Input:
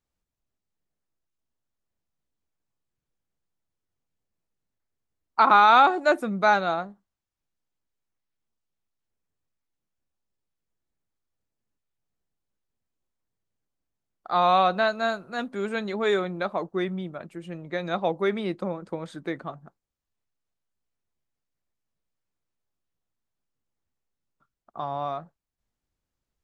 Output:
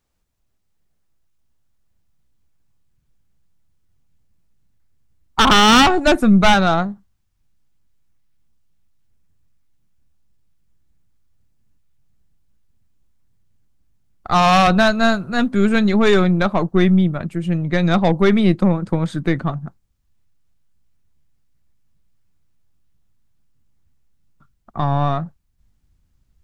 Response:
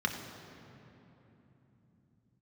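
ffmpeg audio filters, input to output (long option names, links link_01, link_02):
-af "aeval=exprs='0.501*sin(PI/2*2.82*val(0)/0.501)':channel_layout=same,aeval=exprs='0.501*(cos(1*acos(clip(val(0)/0.501,-1,1)))-cos(1*PI/2))+0.0251*(cos(3*acos(clip(val(0)/0.501,-1,1)))-cos(3*PI/2))+0.0224*(cos(4*acos(clip(val(0)/0.501,-1,1)))-cos(4*PI/2))':channel_layout=same,asubboost=boost=5:cutoff=200,volume=-1dB"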